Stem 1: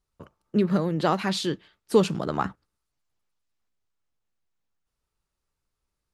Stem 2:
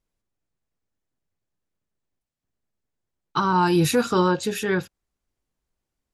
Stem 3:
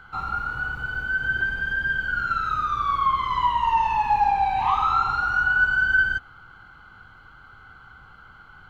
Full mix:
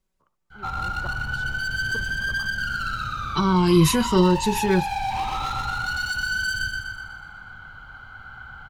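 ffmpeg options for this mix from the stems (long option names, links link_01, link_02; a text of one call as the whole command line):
ffmpeg -i stem1.wav -i stem2.wav -i stem3.wav -filter_complex "[0:a]equalizer=frequency=1100:width_type=o:width=1.1:gain=14.5,aeval=exprs='val(0)*pow(10,-19*if(lt(mod(-5.6*n/s,1),2*abs(-5.6)/1000),1-mod(-5.6*n/s,1)/(2*abs(-5.6)/1000),(mod(-5.6*n/s,1)-2*abs(-5.6)/1000)/(1-2*abs(-5.6)/1000))/20)':channel_layout=same,volume=-15dB[link_01];[1:a]aecho=1:1:5.3:0.65,volume=1.5dB[link_02];[2:a]adynamicequalizer=threshold=0.0251:dfrequency=1100:dqfactor=1.1:tfrequency=1100:tqfactor=1.1:attack=5:release=100:ratio=0.375:range=2.5:mode=cutabove:tftype=bell,aecho=1:1:1.3:0.47,asoftclip=type=hard:threshold=-23dB,adelay=500,volume=1.5dB,asplit=2[link_03][link_04];[link_04]volume=-3.5dB,aecho=0:1:123|246|369|492|615|738|861|984:1|0.54|0.292|0.157|0.085|0.0459|0.0248|0.0134[link_05];[link_01][link_02][link_03][link_05]amix=inputs=4:normalize=0,acrossover=split=370|3000[link_06][link_07][link_08];[link_07]acompressor=threshold=-30dB:ratio=2[link_09];[link_06][link_09][link_08]amix=inputs=3:normalize=0" out.wav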